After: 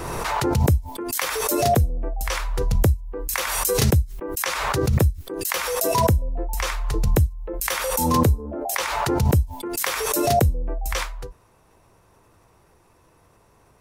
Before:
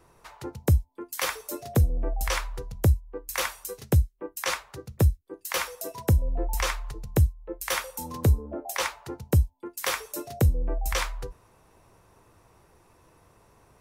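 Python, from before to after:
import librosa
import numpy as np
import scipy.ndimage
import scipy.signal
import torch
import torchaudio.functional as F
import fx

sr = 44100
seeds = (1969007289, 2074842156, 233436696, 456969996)

y = fx.pre_swell(x, sr, db_per_s=24.0)
y = F.gain(torch.from_numpy(y), 1.0).numpy()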